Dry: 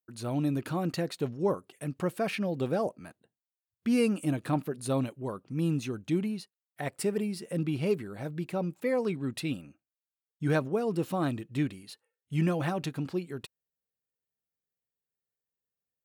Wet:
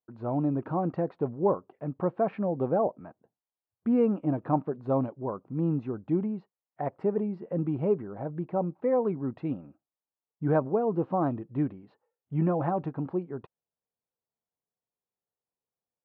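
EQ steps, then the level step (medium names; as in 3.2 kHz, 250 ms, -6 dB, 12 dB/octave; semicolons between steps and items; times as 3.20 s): resonant low-pass 910 Hz, resonance Q 1.8; distance through air 120 m; bass shelf 69 Hz -7.5 dB; +1.5 dB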